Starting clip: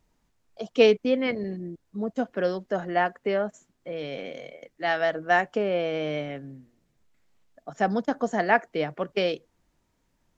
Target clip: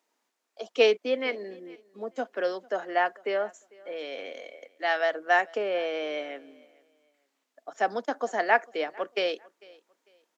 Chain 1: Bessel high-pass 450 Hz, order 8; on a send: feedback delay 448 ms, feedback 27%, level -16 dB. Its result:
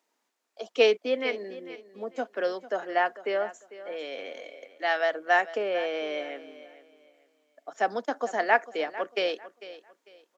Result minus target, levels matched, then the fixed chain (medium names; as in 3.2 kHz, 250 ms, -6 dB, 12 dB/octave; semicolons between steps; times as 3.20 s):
echo-to-direct +8.5 dB
Bessel high-pass 450 Hz, order 8; on a send: feedback delay 448 ms, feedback 27%, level -24.5 dB